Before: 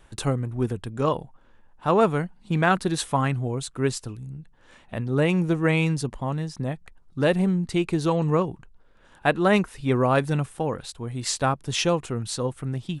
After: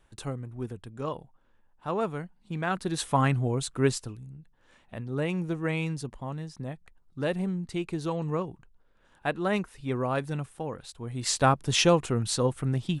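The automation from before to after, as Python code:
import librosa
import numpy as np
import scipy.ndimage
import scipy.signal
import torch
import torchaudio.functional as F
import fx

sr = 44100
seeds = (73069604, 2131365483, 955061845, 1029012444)

y = fx.gain(x, sr, db=fx.line((2.63, -10.0), (3.22, 0.0), (3.88, 0.0), (4.32, -8.0), (10.82, -8.0), (11.47, 1.5)))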